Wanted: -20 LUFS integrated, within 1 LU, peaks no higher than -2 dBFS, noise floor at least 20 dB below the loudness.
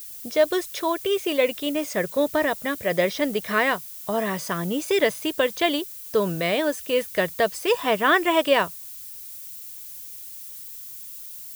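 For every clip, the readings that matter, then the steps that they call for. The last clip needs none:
noise floor -39 dBFS; noise floor target -44 dBFS; loudness -23.5 LUFS; peak -6.5 dBFS; loudness target -20.0 LUFS
-> denoiser 6 dB, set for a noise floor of -39 dBFS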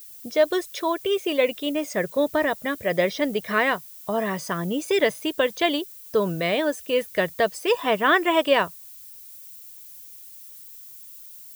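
noise floor -44 dBFS; loudness -23.5 LUFS; peak -7.0 dBFS; loudness target -20.0 LUFS
-> gain +3.5 dB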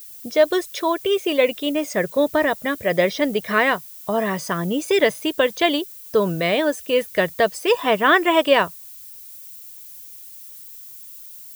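loudness -20.0 LUFS; peak -3.5 dBFS; noise floor -40 dBFS

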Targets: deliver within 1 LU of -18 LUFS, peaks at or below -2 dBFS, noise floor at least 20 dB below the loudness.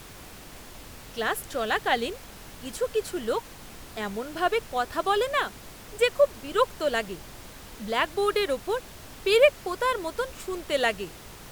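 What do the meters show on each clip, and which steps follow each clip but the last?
noise floor -45 dBFS; noise floor target -47 dBFS; loudness -27.0 LUFS; peak -7.0 dBFS; loudness target -18.0 LUFS
-> noise print and reduce 6 dB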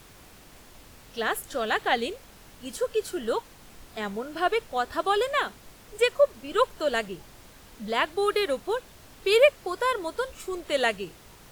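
noise floor -51 dBFS; loudness -27.0 LUFS; peak -7.0 dBFS; loudness target -18.0 LUFS
-> gain +9 dB; limiter -2 dBFS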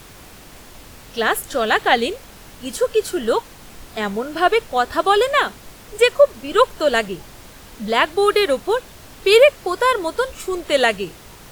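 loudness -18.5 LUFS; peak -2.0 dBFS; noise floor -42 dBFS

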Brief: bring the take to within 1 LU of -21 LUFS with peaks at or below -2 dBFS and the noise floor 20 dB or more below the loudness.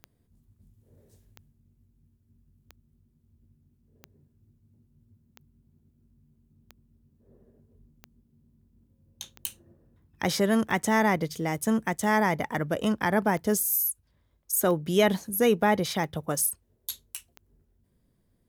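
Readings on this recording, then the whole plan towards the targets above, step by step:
clicks 14; loudness -26.5 LUFS; peak -11.0 dBFS; loudness target -21.0 LUFS
-> de-click; gain +5.5 dB

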